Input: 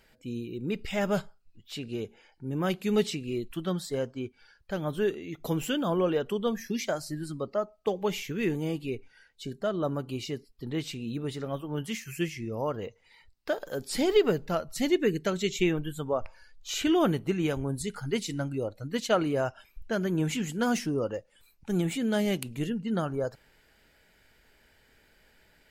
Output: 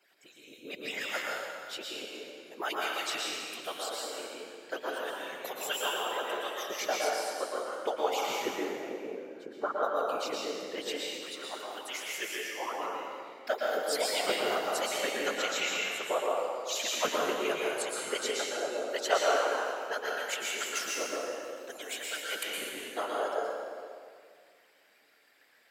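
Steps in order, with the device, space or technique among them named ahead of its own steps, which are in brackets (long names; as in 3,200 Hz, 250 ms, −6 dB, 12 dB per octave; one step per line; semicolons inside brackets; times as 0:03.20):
harmonic-percussive split with one part muted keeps percussive
0:08.39–0:09.76: drawn EQ curve 270 Hz 0 dB, 1,100 Hz +9 dB, 2,800 Hz −16 dB
whispering ghost (random phases in short frames; high-pass filter 490 Hz 12 dB per octave; convolution reverb RT60 2.1 s, pre-delay 107 ms, DRR −4 dB)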